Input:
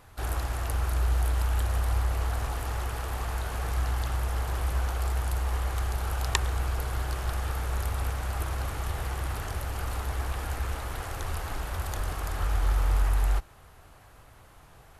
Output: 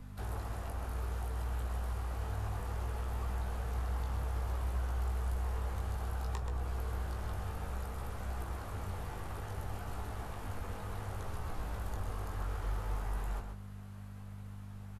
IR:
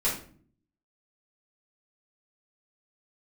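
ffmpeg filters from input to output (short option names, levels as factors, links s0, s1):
-filter_complex "[0:a]flanger=delay=16.5:depth=4.2:speed=0.61,aeval=exprs='val(0)+0.00794*(sin(2*PI*50*n/s)+sin(2*PI*2*50*n/s)/2+sin(2*PI*3*50*n/s)/3+sin(2*PI*4*50*n/s)/4+sin(2*PI*5*50*n/s)/5)':c=same,acrossover=split=100|1200[s0][s1][s2];[s0]acompressor=threshold=0.0282:ratio=4[s3];[s1]acompressor=threshold=0.01:ratio=4[s4];[s2]acompressor=threshold=0.00251:ratio=4[s5];[s3][s4][s5]amix=inputs=3:normalize=0,aecho=1:1:130:0.447,asplit=2[s6][s7];[1:a]atrim=start_sample=2205[s8];[s7][s8]afir=irnorm=-1:irlink=0,volume=0.126[s9];[s6][s9]amix=inputs=2:normalize=0,volume=0.631"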